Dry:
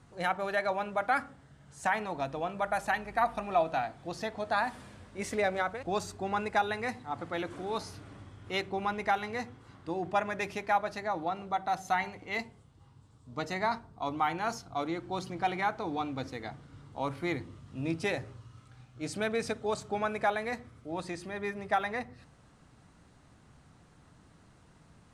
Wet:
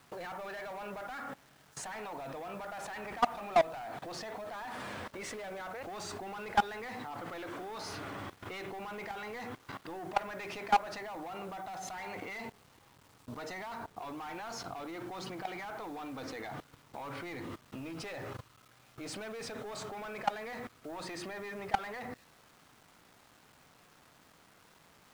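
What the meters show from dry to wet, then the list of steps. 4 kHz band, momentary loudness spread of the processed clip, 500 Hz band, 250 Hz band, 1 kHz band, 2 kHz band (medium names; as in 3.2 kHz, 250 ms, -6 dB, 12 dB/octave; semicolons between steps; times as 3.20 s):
-3.0 dB, 12 LU, -6.0 dB, -6.5 dB, -5.0 dB, -7.0 dB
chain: overdrive pedal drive 25 dB, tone 2.3 kHz, clips at -16 dBFS; level held to a coarse grid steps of 21 dB; bit crusher 10-bit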